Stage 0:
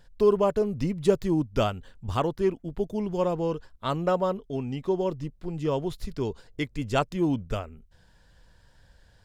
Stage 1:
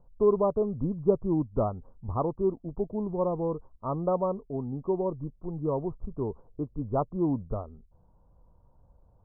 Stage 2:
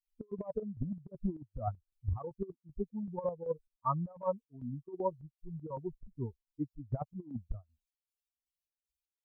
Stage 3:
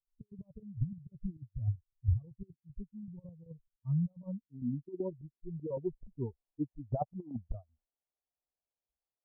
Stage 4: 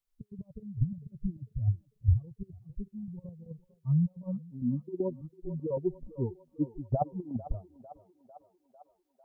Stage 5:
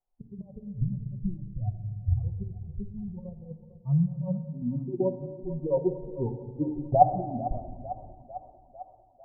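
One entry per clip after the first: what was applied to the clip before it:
Butterworth low-pass 1,200 Hz 72 dB per octave; level −2 dB
spectral dynamics exaggerated over time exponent 3; compressor whose output falls as the input rises −37 dBFS, ratio −0.5; square-wave tremolo 2.6 Hz, depth 65%, duty 55%; level +4.5 dB
low-pass filter sweep 120 Hz → 710 Hz, 0:03.70–0:06.28
feedback echo with a high-pass in the loop 449 ms, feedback 82%, high-pass 500 Hz, level −13 dB; level +5 dB
low-pass with resonance 770 Hz, resonance Q 4.8; on a send at −7 dB: convolution reverb RT60 1.5 s, pre-delay 6 ms

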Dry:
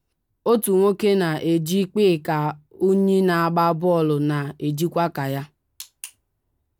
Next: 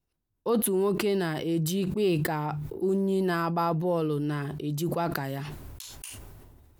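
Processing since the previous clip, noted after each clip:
level that may fall only so fast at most 27 dB per second
level −8.5 dB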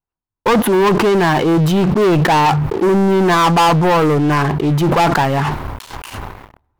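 drawn EQ curve 340 Hz 0 dB, 610 Hz +2 dB, 900 Hz +12 dB, 7,800 Hz −15 dB
leveller curve on the samples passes 5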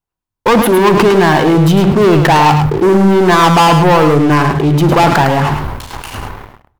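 single-tap delay 107 ms −7 dB
on a send at −18 dB: convolution reverb RT60 0.35 s, pre-delay 36 ms
on the sum: level +3.5 dB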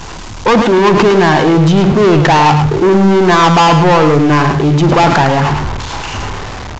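converter with a step at zero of −17.5 dBFS
downsampling to 16,000 Hz
level −1 dB

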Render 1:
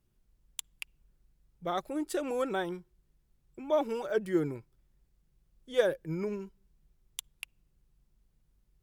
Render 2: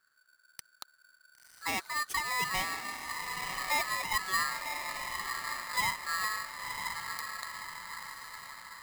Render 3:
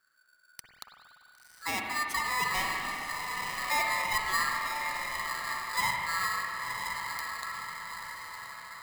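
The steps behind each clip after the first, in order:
brickwall limiter −22.5 dBFS, peak gain reduction 9.5 dB; feedback delay with all-pass diffusion 1,028 ms, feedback 54%, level −5 dB; ring modulator with a square carrier 1,500 Hz
spring reverb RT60 2.4 s, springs 48/57 ms, chirp 50 ms, DRR 1 dB

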